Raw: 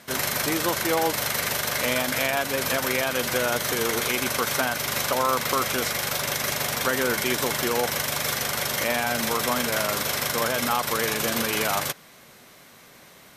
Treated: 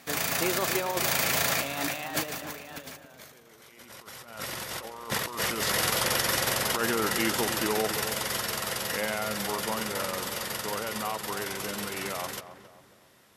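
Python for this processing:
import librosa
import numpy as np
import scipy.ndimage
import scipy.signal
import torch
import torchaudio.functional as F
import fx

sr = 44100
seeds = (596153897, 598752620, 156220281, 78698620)

p1 = fx.doppler_pass(x, sr, speed_mps=40, closest_m=20.0, pass_at_s=3.48)
p2 = fx.over_compress(p1, sr, threshold_db=-40.0, ratio=-0.5)
p3 = p2 + fx.echo_filtered(p2, sr, ms=270, feedback_pct=42, hz=1300.0, wet_db=-10.5, dry=0)
y = F.gain(torch.from_numpy(p3), 9.0).numpy()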